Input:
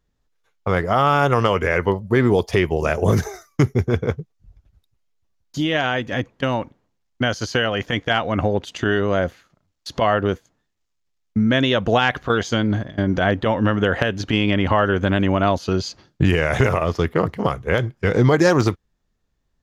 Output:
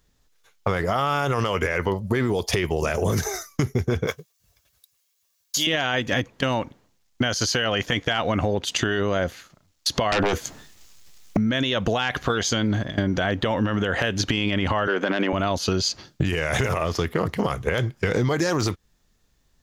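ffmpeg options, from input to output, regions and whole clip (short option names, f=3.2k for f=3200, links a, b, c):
-filter_complex "[0:a]asettb=1/sr,asplit=3[a][b][c];[a]atrim=end=4.074[d];[b]atrim=start=4.07:end=5.67,asetpts=PTS-STARTPTS,afade=t=in:d=0.004:c=qsin,afade=t=out:st=1.596:d=0.004:c=qsin,highpass=f=1.2k:p=1,highshelf=f=8.3k:g=10,aecho=1:1:1.8:0.35,atrim=end_sample=70560[e];[c]atrim=start=5.666[f];[d][e]acrossfade=d=0.004:c1=hsin:c2=qsin[g];[g][f]acrossfade=d=0.004:c1=qsin:c2=hsin,asettb=1/sr,asplit=3[h][i][j];[h]atrim=end=10.124[k];[i]atrim=start=10.12:end=11.37,asetpts=PTS-STARTPTS,afade=t=in:d=0.004:c=qsin,afade=t=out:st=1.246:d=0.004:c=qsin,asplit=2[l][m];[m]adelay=14,volume=-12.5dB[n];[l][n]amix=inputs=2:normalize=0,atrim=end_sample=55125,acrossover=split=180|1100|2400[o][p][q][r];[o]acompressor=threshold=-36dB:ratio=3[s];[p]acompressor=threshold=-25dB:ratio=3[t];[q]acompressor=threshold=-38dB:ratio=3[u];[r]acompressor=threshold=-45dB:ratio=3[v];[s][t][u][v]amix=inputs=4:normalize=0,aeval=exprs='0.355*sin(PI/2*5.01*val(0)/0.355)':c=same[w];[j]atrim=start=11.366[x];[k][w]acrossfade=d=0.004:c1=hsin:c2=qsin[y];[y][x]acrossfade=d=0.004:c1=qsin:c2=hsin,asettb=1/sr,asplit=3[z][aa][ab];[z]atrim=end=14.874[ac];[aa]atrim=start=14.87:end=15.33,asetpts=PTS-STARTPTS,afade=t=in:d=0.004:c=qsin,afade=t=out:st=0.456:d=0.004:c=qsin,highpass=f=180:w=0.5412,highpass=f=180:w=1.3066,bass=f=250:g=-12,treble=f=4k:g=-13,acontrast=66[ad];[ab]atrim=start=15.326[ae];[ac][ad]acrossfade=d=0.004:c1=hsin:c2=qsin[af];[af][ae]acrossfade=d=0.004:c1=qsin:c2=hsin,highshelf=f=2.8k:g=9.5,alimiter=limit=-11dB:level=0:latency=1:release=24,acompressor=threshold=-25dB:ratio=6,volume=5.5dB"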